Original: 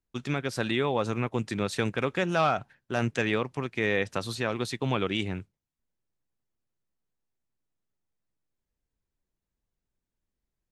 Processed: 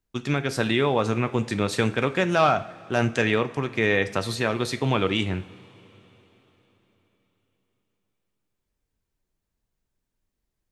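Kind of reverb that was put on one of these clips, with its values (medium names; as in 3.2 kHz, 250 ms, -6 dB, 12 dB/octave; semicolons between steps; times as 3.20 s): two-slope reverb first 0.43 s, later 4.2 s, from -20 dB, DRR 9.5 dB; trim +4.5 dB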